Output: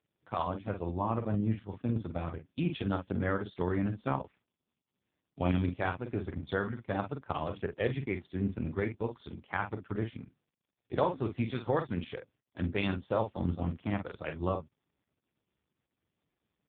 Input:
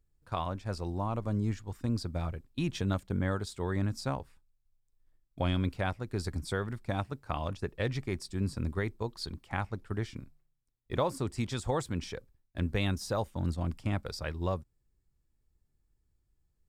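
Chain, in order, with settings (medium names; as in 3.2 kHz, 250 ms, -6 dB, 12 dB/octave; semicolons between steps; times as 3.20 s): bass shelf 230 Hz -3.5 dB; doubling 45 ms -7 dB; trim +3 dB; AMR-NB 4.75 kbps 8 kHz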